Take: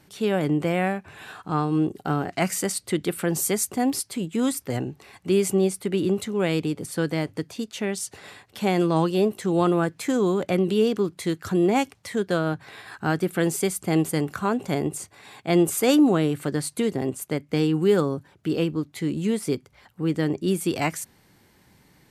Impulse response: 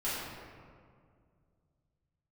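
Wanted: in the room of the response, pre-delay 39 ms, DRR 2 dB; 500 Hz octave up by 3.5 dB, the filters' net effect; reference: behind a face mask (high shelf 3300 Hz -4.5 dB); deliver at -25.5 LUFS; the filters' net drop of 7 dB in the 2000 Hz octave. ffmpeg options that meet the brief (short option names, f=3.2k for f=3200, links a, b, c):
-filter_complex "[0:a]equalizer=f=500:t=o:g=5,equalizer=f=2k:t=o:g=-8,asplit=2[a][b];[1:a]atrim=start_sample=2205,adelay=39[c];[b][c]afir=irnorm=-1:irlink=0,volume=-9dB[d];[a][d]amix=inputs=2:normalize=0,highshelf=f=3.3k:g=-4.5,volume=-5dB"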